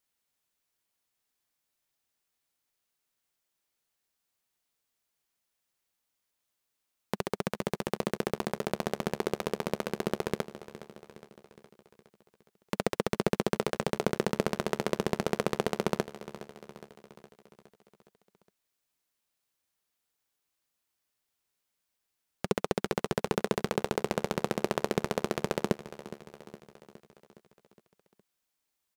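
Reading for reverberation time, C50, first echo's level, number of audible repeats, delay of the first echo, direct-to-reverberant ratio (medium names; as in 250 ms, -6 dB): no reverb, no reverb, -15.0 dB, 5, 414 ms, no reverb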